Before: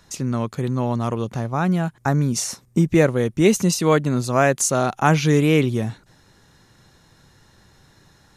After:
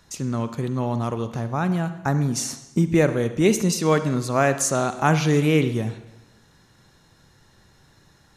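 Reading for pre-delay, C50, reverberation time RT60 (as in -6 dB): 38 ms, 11.5 dB, 1.0 s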